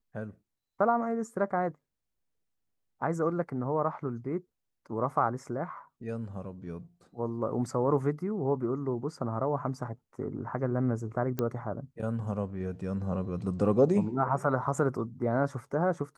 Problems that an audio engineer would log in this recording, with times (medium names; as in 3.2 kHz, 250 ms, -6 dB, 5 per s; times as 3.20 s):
11.39 s: pop -17 dBFS